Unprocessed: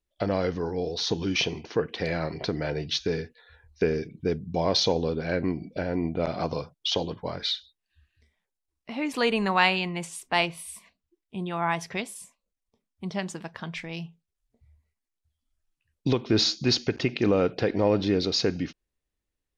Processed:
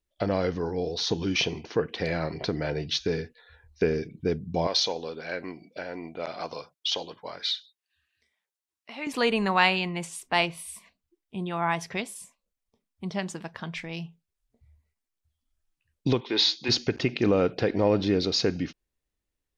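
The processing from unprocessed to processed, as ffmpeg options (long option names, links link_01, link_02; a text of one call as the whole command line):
ffmpeg -i in.wav -filter_complex "[0:a]asettb=1/sr,asplit=3[link_01][link_02][link_03];[link_01]atrim=end=4.674[link_04];[link_02]atrim=start=4.67:end=9.07,asetpts=PTS-STARTPTS,afade=type=in:duration=0.004:curve=qsin,afade=type=out:start_time=4.396:duration=0.004:curve=qsin,highpass=frequency=950:poles=1[link_05];[link_03]atrim=start=9.066[link_06];[link_04][link_05]acrossfade=duration=0.004:curve1=hsin:curve2=qsin[link_07];[link_07][link_06]acrossfade=duration=0.004:curve1=qsin:curve2=hsin,asplit=3[link_08][link_09][link_10];[link_08]afade=type=out:start_time=16.2:duration=0.02[link_11];[link_09]highpass=440,equalizer=frequency=650:width_type=q:width=4:gain=-9,equalizer=frequency=920:width_type=q:width=4:gain=8,equalizer=frequency=1300:width_type=q:width=4:gain=-7,equalizer=frequency=2000:width_type=q:width=4:gain=5,equalizer=frequency=3500:width_type=q:width=4:gain=8,equalizer=frequency=5500:width_type=q:width=4:gain=-4,lowpass=frequency=6000:width=0.5412,lowpass=frequency=6000:width=1.3066,afade=type=in:start_time=16.2:duration=0.02,afade=type=out:start_time=16.68:duration=0.02[link_12];[link_10]afade=type=in:start_time=16.68:duration=0.02[link_13];[link_11][link_12][link_13]amix=inputs=3:normalize=0" out.wav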